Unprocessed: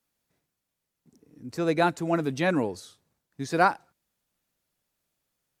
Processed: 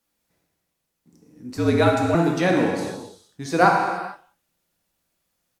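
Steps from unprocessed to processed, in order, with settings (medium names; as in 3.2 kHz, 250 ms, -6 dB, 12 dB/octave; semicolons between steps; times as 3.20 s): speakerphone echo 180 ms, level -24 dB; gated-style reverb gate 490 ms falling, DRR -0.5 dB; 1.56–2.15 s: frequency shift -59 Hz; trim +2.5 dB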